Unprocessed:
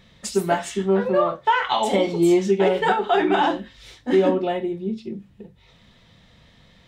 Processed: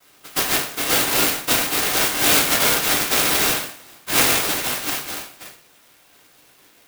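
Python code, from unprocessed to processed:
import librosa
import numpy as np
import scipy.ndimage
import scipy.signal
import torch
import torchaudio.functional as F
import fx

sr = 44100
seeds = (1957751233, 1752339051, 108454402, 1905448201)

p1 = fx.dead_time(x, sr, dead_ms=0.071)
p2 = fx.noise_vocoder(p1, sr, seeds[0], bands=1)
p3 = np.clip(p2, -10.0 ** (-20.0 / 20.0), 10.0 ** (-20.0 / 20.0))
p4 = p2 + (p3 * librosa.db_to_amplitude(-5.0))
p5 = p4 + 10.0 ** (-21.0 / 20.0) * np.pad(p4, (int(165 * sr / 1000.0), 0))[:len(p4)]
p6 = fx.rev_double_slope(p5, sr, seeds[1], early_s=0.42, late_s=1.9, knee_db=-27, drr_db=-6.0)
p7 = fx.clock_jitter(p6, sr, seeds[2], jitter_ms=0.049)
y = p7 * librosa.db_to_amplitude(-9.0)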